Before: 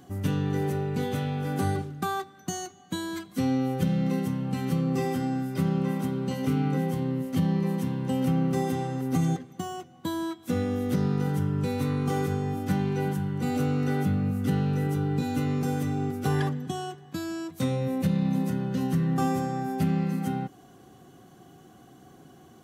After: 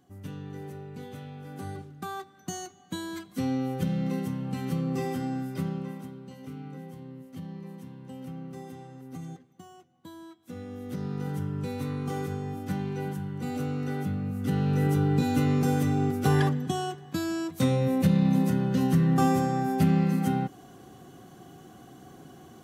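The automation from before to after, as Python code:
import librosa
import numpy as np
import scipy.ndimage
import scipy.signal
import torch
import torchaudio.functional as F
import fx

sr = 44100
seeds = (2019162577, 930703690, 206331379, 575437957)

y = fx.gain(x, sr, db=fx.line((1.51, -12.5), (2.52, -3.0), (5.5, -3.0), (6.24, -15.0), (10.41, -15.0), (11.31, -5.0), (14.28, -5.0), (14.86, 3.0)))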